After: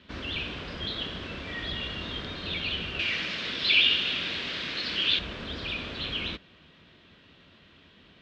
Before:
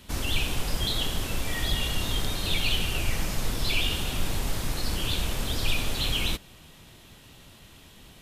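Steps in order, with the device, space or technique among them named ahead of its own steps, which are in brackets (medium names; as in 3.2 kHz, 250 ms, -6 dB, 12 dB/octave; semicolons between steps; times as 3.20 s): 2.99–5.19 s: frequency weighting D; guitar cabinet (cabinet simulation 87–3900 Hz, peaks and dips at 120 Hz -10 dB, 820 Hz -8 dB, 1.6 kHz +3 dB); trim -2.5 dB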